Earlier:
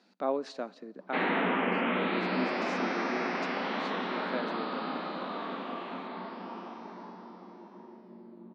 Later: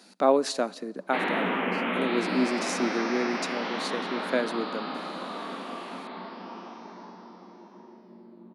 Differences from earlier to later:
speech +9.0 dB
master: remove high-frequency loss of the air 150 metres

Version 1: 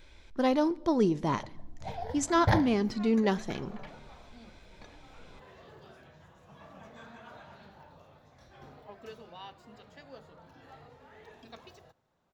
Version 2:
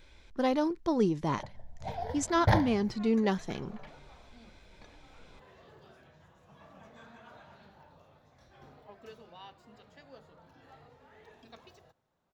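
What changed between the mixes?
speech: send off
first sound: send +11.5 dB
second sound −3.5 dB

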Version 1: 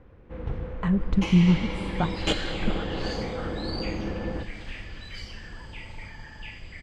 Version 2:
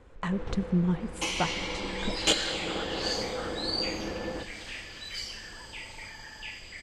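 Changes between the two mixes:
speech: entry −0.60 s
master: add bass and treble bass −10 dB, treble +12 dB

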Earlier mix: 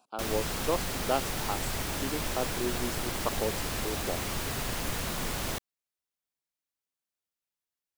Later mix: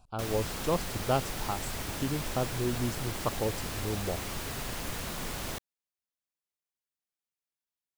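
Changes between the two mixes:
speech: remove high-pass filter 250 Hz 24 dB per octave
background −3.5 dB

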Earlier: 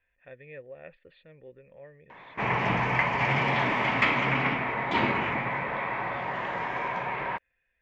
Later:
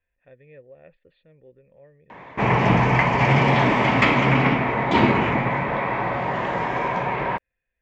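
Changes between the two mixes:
background +12.0 dB
master: add parametric band 2,000 Hz −8 dB 2.8 octaves

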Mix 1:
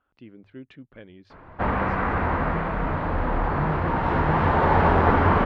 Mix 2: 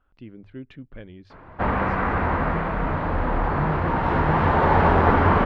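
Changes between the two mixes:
speech: remove high-pass filter 200 Hz 6 dB per octave
reverb: on

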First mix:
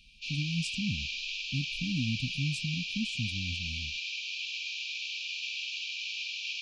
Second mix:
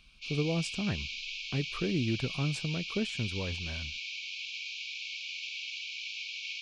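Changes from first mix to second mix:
background: send −11.0 dB
master: remove linear-phase brick-wall band-stop 290–2,300 Hz

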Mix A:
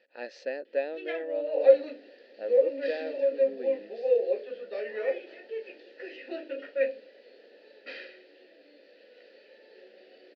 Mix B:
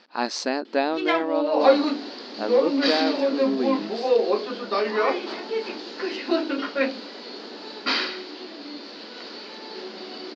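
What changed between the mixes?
second sound +5.0 dB
master: remove formant filter e

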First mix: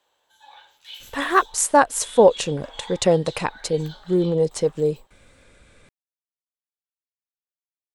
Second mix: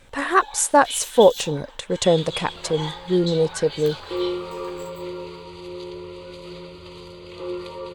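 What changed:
speech: entry −1.00 s
first sound +8.0 dB
second sound: unmuted

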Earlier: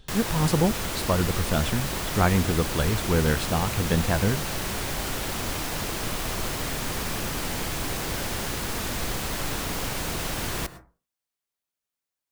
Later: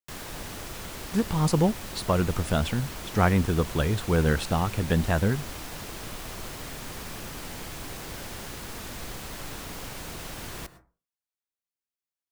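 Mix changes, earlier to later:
speech: entry +1.00 s
background −8.5 dB

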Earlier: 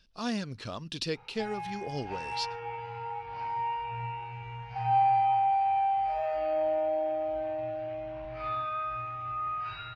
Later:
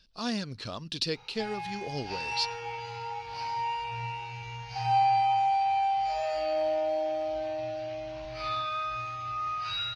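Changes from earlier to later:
background: remove low-pass filter 2,100 Hz 12 dB per octave
master: add parametric band 4,400 Hz +6.5 dB 0.59 octaves

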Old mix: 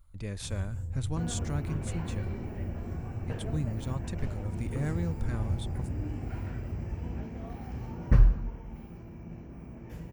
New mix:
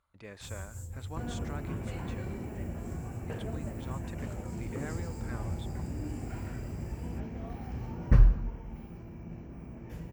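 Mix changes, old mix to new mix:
speech: add resonant band-pass 1,200 Hz, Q 0.61
first sound: add bass and treble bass −6 dB, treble +15 dB

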